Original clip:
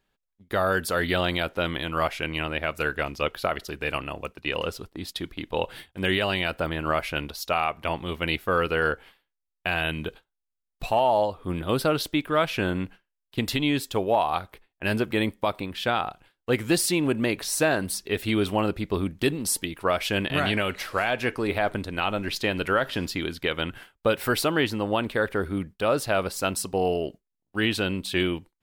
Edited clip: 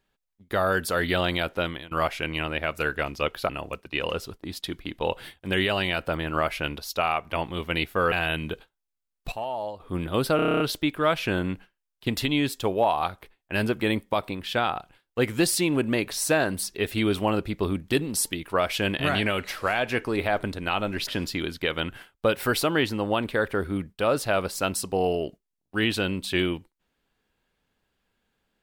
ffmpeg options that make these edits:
-filter_complex "[0:a]asplit=15[s0][s1][s2][s3][s4][s5][s6][s7][s8][s9][s10][s11][s12][s13][s14];[s0]atrim=end=1.91,asetpts=PTS-STARTPTS,afade=t=out:st=1.6:d=0.31:silence=0.0749894[s15];[s1]atrim=start=1.91:end=3.492,asetpts=PTS-STARTPTS,afade=t=in:d=0.004:c=hsin:silence=0.0749894[s16];[s2]atrim=start=4.008:end=8.642[s17];[s3]atrim=start=9.668:end=10.872[s18];[s4]atrim=start=10.868:end=11.352,asetpts=PTS-STARTPTS,volume=0.316[s19];[s5]atrim=start=11.348:end=11.942[s20];[s6]atrim=start=11.908:end=11.942[s21];[s7]atrim=start=11.908:end=11.942[s22];[s8]atrim=start=11.908:end=11.942[s23];[s9]atrim=start=11.908:end=11.942[s24];[s10]atrim=start=11.908:end=11.942[s25];[s11]atrim=start=11.908:end=11.942[s26];[s12]atrim=start=11.908:end=11.942[s27];[s13]atrim=start=11.908:end=22.382[s28];[s14]atrim=start=22.878[s29];[s15][s16]concat=n=2:v=0:a=1[s30];[s30][s17]acrossfade=d=0.004:c1=hsin:c2=hsin[s31];[s31][s18]acrossfade=d=0.004:c1=hsin:c2=hsin[s32];[s32][s19]acrossfade=d=0.004:c1=hsin:c2=hsin[s33];[s33][s20]acrossfade=d=0.004:c1=hsin:c2=hsin[s34];[s34][s21]acrossfade=d=0.004:c1=hsin:c2=hsin[s35];[s35][s22]acrossfade=d=0.004:c1=hsin:c2=hsin[s36];[s36][s23]acrossfade=d=0.004:c1=hsin:c2=hsin[s37];[s37][s24]acrossfade=d=0.004:c1=hsin:c2=hsin[s38];[s38][s25]acrossfade=d=0.004:c1=hsin:c2=hsin[s39];[s39][s26]acrossfade=d=0.004:c1=hsin:c2=hsin[s40];[s40][s27]acrossfade=d=0.004:c1=hsin:c2=hsin[s41];[s41][s28]acrossfade=d=0.004:c1=hsin:c2=hsin[s42];[s42][s29]acrossfade=d=0.004:c1=hsin:c2=hsin"

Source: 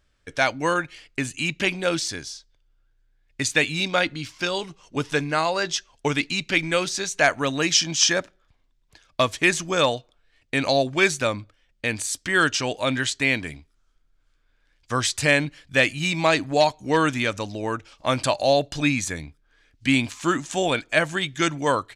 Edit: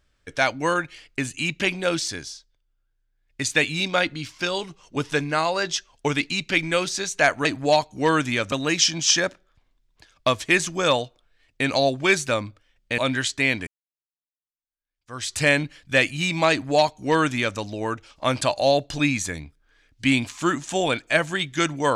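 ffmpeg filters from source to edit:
-filter_complex "[0:a]asplit=7[s0][s1][s2][s3][s4][s5][s6];[s0]atrim=end=2.63,asetpts=PTS-STARTPTS,afade=t=out:st=2.23:d=0.4:silence=0.398107[s7];[s1]atrim=start=2.63:end=3.12,asetpts=PTS-STARTPTS,volume=0.398[s8];[s2]atrim=start=3.12:end=7.452,asetpts=PTS-STARTPTS,afade=t=in:d=0.4:silence=0.398107[s9];[s3]atrim=start=16.328:end=17.402[s10];[s4]atrim=start=7.448:end=11.912[s11];[s5]atrim=start=12.798:end=13.49,asetpts=PTS-STARTPTS,afade=t=out:st=0.688:d=0.004:c=hsin[s12];[s6]atrim=start=13.49,asetpts=PTS-STARTPTS,afade=t=in:d=1.68:c=exp[s13];[s7][s8][s9]concat=n=3:v=0:a=1[s14];[s14][s10]acrossfade=d=0.004:c1=hsin:c2=hsin[s15];[s15][s11]acrossfade=d=0.004:c1=hsin:c2=hsin[s16];[s12][s13]concat=n=2:v=0:a=1[s17];[s16][s17]acrossfade=d=0.004:c1=hsin:c2=hsin"

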